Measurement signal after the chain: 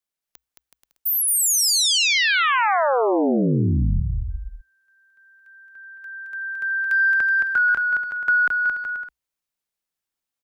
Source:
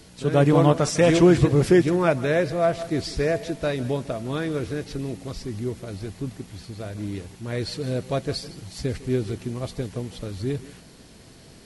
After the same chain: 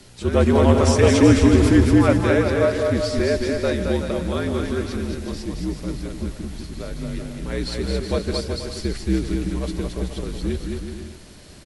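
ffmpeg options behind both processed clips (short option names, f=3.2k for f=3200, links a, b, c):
-filter_complex "[0:a]acontrast=22,afreqshift=-60,asplit=2[a][b];[b]aecho=0:1:220|374|481.8|557.3|610.1:0.631|0.398|0.251|0.158|0.1[c];[a][c]amix=inputs=2:normalize=0,volume=-3dB"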